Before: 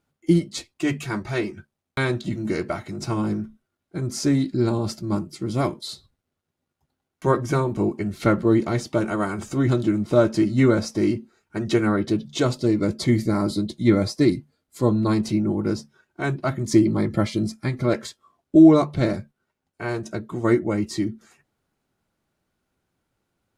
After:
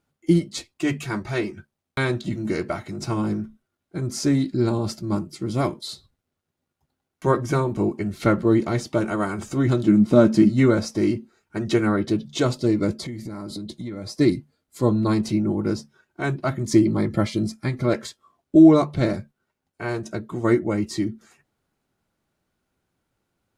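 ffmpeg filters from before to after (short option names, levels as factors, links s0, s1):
-filter_complex "[0:a]asettb=1/sr,asplit=3[s0][s1][s2];[s0]atrim=end=9.884[s3];[s1]atrim=start=9.88:end=10.5,asetpts=PTS-STARTPTS,afade=t=in:d=0.004:c=qsin,afade=t=out:st=0.616:d=0.004:c=qsin,equalizer=f=220:w=2:g=10.5[s4];[s2]atrim=start=10.496[s5];[s3][s4]acrossfade=d=0.004:c1=hsin:c2=qsin[s6];[s6][s5]acrossfade=d=0.004:c1=qsin:c2=hsin,asettb=1/sr,asplit=3[s7][s8][s9];[s7]atrim=end=12.944[s10];[s8]atrim=start=12.94:end=14.19,asetpts=PTS-STARTPTS,afade=t=in:d=0.004:c=qsin,afade=t=out:st=1.246:d=0.004:c=qsin,acompressor=threshold=0.0355:ratio=10:attack=3.2:release=140:knee=1:detection=peak[s11];[s9]atrim=start=14.186[s12];[s10][s11]acrossfade=d=0.004:c1=hsin:c2=qsin[s13];[s13][s12]acrossfade=d=0.004:c1=qsin:c2=hsin"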